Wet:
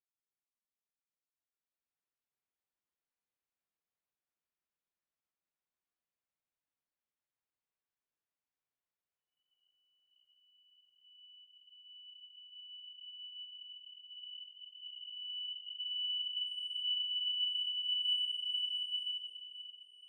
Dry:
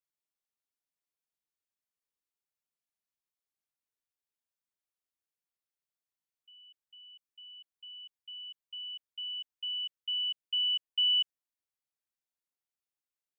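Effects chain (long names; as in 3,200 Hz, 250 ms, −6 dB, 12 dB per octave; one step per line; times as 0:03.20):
spectrum smeared in time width 362 ms
time stretch by phase vocoder 1.5×
gain into a clipping stage and back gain 33 dB
low-pass filter 2,800 Hz 12 dB per octave
slow-attack reverb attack 2,110 ms, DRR −8.5 dB
level −4 dB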